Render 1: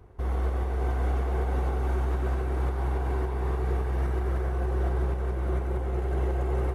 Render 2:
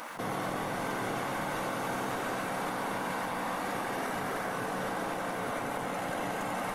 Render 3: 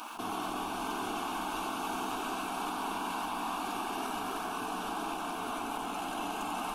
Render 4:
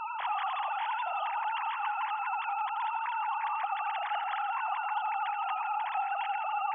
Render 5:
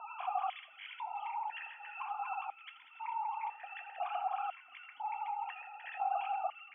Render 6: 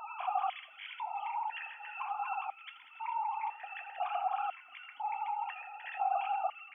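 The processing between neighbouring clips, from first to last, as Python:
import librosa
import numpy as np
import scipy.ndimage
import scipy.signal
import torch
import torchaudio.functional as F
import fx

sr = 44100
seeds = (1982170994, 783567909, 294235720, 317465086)

y1 = fx.spec_gate(x, sr, threshold_db=-20, keep='weak')
y1 = fx.high_shelf(y1, sr, hz=2400.0, db=8.5)
y1 = fx.env_flatten(y1, sr, amount_pct=70)
y1 = y1 * 10.0 ** (2.0 / 20.0)
y2 = fx.peak_eq(y1, sr, hz=2600.0, db=12.0, octaves=0.78)
y2 = fx.fixed_phaser(y2, sr, hz=530.0, stages=6)
y3 = fx.sine_speech(y2, sr)
y3 = fx.rider(y3, sr, range_db=10, speed_s=0.5)
y3 = fx.echo_heads(y3, sr, ms=84, heads='first and second', feedback_pct=46, wet_db=-14.0)
y3 = y3 * 10.0 ** (3.0 / 20.0)
y4 = fx.harmonic_tremolo(y3, sr, hz=2.8, depth_pct=70, crossover_hz=980.0)
y4 = fx.rev_fdn(y4, sr, rt60_s=0.44, lf_ratio=1.0, hf_ratio=0.95, size_ms=44.0, drr_db=8.0)
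y4 = fx.vowel_held(y4, sr, hz=2.0)
y4 = y4 * 10.0 ** (7.0 / 20.0)
y5 = fx.wow_flutter(y4, sr, seeds[0], rate_hz=2.1, depth_cents=20.0)
y5 = y5 * 10.0 ** (2.5 / 20.0)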